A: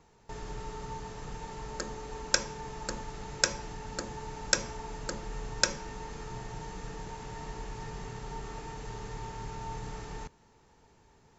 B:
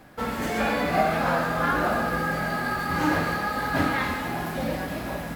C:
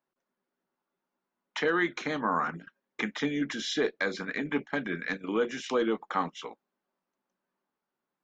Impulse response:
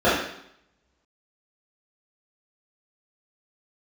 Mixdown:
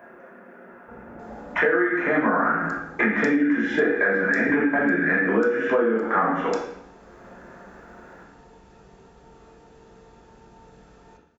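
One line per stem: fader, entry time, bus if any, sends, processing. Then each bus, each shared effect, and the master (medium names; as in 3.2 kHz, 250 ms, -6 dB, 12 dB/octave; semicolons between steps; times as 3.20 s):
-15.5 dB, 0.90 s, send -15.5 dB, none
-14.0 dB, 0.70 s, no send, steep low-pass 900 Hz
+0.5 dB, 0.00 s, send -7.5 dB, upward compressor, threshold -46 dBFS; resonant high shelf 2.8 kHz -12 dB, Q 3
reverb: on, RT60 0.70 s, pre-delay 3 ms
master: compression 20:1, threshold -17 dBFS, peak gain reduction 16.5 dB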